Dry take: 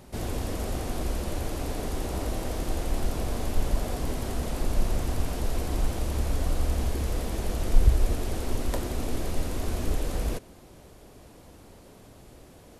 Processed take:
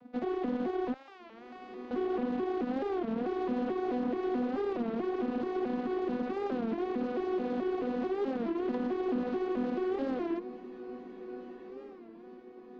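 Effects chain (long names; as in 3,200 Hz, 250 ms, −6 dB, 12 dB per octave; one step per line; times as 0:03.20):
vocoder with an arpeggio as carrier bare fifth, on B3, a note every 217 ms
0:00.94–0:01.91: high-pass filter 1,200 Hz 12 dB per octave
brickwall limiter −29.5 dBFS, peak gain reduction 6.5 dB
harmonic generator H 7 −22 dB, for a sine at −29.5 dBFS
high-frequency loss of the air 290 metres
feedback delay with all-pass diffusion 1,452 ms, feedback 42%, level −13 dB
wow of a warped record 33 1/3 rpm, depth 160 cents
level +5.5 dB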